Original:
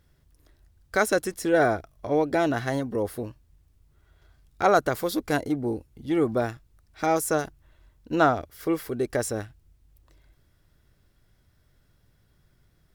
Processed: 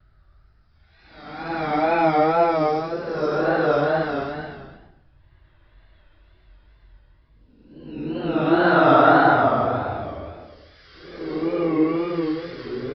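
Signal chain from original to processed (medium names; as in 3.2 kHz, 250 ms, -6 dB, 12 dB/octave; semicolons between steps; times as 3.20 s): Paulstretch 6×, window 0.25 s, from 6.74 s; wow and flutter 93 cents; resampled via 11.025 kHz; trim +4 dB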